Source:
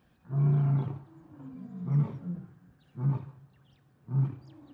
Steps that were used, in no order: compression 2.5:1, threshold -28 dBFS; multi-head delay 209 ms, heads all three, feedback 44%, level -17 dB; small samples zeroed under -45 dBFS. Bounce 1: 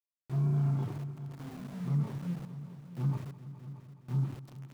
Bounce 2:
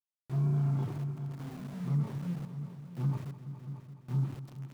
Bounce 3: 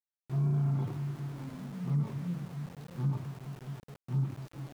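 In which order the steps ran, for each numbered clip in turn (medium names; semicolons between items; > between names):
small samples zeroed > compression > multi-head delay; small samples zeroed > multi-head delay > compression; multi-head delay > small samples zeroed > compression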